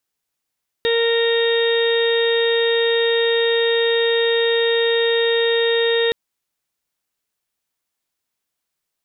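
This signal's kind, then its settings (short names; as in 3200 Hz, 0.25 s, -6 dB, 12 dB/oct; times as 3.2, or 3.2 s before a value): steady additive tone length 5.27 s, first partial 463 Hz, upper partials -17/-20/-8/-20/-15.5/-17/-7 dB, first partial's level -16 dB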